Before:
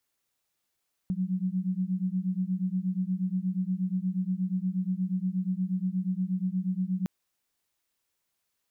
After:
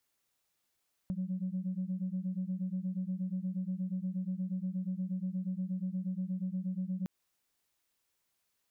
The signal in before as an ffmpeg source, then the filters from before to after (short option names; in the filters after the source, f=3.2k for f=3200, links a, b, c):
-f lavfi -i "aevalsrc='0.0335*(sin(2*PI*181*t)+sin(2*PI*189.4*t))':d=5.96:s=44100"
-af "acompressor=threshold=-32dB:ratio=10,asoftclip=type=tanh:threshold=-27dB"